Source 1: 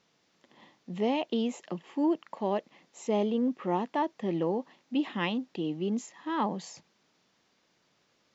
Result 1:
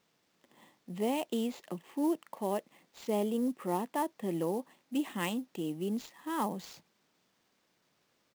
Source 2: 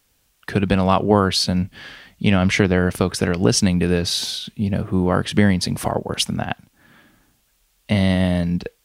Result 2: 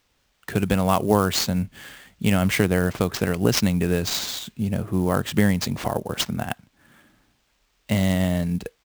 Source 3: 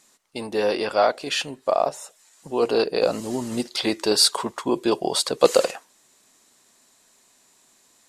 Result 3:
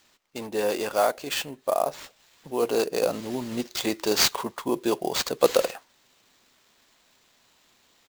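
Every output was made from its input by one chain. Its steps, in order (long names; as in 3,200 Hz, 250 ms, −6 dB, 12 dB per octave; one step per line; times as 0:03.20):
downsampling to 32,000 Hz
sample-rate reduction 11,000 Hz, jitter 20%
level −3.5 dB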